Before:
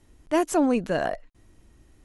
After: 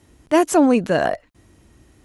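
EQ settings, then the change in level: high-pass 63 Hz 12 dB/octave; +7.0 dB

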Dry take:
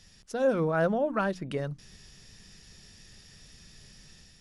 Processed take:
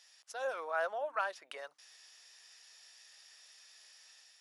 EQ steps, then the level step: high-pass 680 Hz 24 dB/octave; -3.5 dB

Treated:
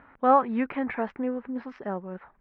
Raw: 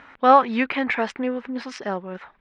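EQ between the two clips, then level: low-pass 1.5 kHz 12 dB/octave; bass shelf 190 Hz +6.5 dB; -5.5 dB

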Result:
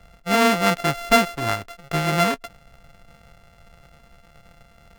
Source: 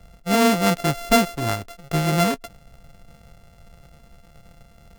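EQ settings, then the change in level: peaking EQ 1.7 kHz +7.5 dB 2.7 oct; -3.5 dB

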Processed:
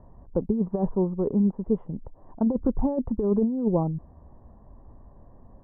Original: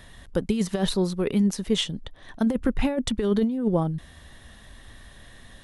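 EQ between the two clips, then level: elliptic low-pass 1 kHz, stop band 80 dB; 0.0 dB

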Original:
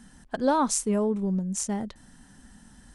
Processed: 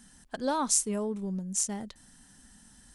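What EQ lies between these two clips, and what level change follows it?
treble shelf 2.8 kHz +10.5 dB; -7.0 dB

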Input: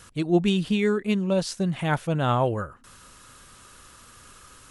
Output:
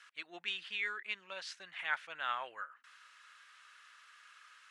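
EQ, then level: ladder band-pass 2.2 kHz, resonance 35%; +5.5 dB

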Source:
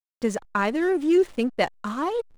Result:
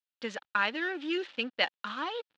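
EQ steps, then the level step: cabinet simulation 300–3700 Hz, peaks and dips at 400 Hz -9 dB, 680 Hz -7 dB, 1.1 kHz -7 dB, 2.1 kHz -6 dB; tilt shelf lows -9 dB, about 1.2 kHz; 0.0 dB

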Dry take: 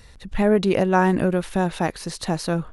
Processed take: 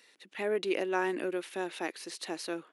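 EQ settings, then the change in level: ladder high-pass 290 Hz, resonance 55%; peaking EQ 2.4 kHz +10.5 dB 1.6 oct; treble shelf 4 kHz +9 dB; -7.5 dB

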